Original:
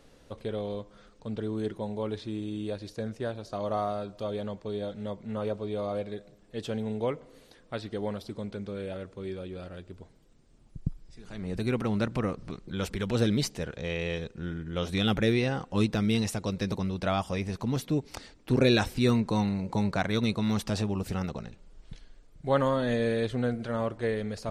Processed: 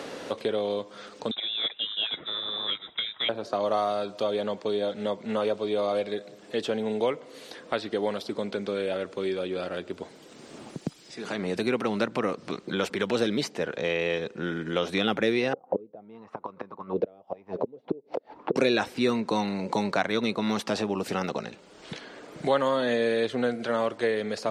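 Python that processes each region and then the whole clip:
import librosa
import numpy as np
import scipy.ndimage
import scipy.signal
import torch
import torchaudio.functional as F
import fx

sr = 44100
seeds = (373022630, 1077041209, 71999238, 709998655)

y = fx.chain(x, sr, fx.low_shelf(hz=320.0, db=-6.5),
    fx.freq_invert(carrier_hz=3800),
    fx.upward_expand(threshold_db=-48.0, expansion=1.5), at=(1.31, 3.29))
y = fx.chain(y, sr, fx.block_float(bits=7),
    fx.gate_flip(shuts_db=-22.0, range_db=-30),
    fx.envelope_lowpass(base_hz=470.0, top_hz=1400.0, q=5.5, full_db=-38.5, direction='down'), at=(15.53, 18.56))
y = scipy.signal.sosfilt(scipy.signal.butter(2, 300.0, 'highpass', fs=sr, output='sos'), y)
y = fx.high_shelf(y, sr, hz=8100.0, db=-11.5)
y = fx.band_squash(y, sr, depth_pct=70)
y = y * librosa.db_to_amplitude(6.0)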